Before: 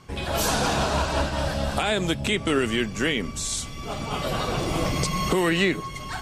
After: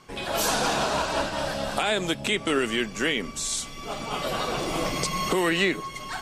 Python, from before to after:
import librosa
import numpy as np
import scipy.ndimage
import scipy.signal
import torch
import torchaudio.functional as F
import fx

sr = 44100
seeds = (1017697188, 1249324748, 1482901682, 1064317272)

y = fx.peak_eq(x, sr, hz=74.0, db=-15.0, octaves=1.9)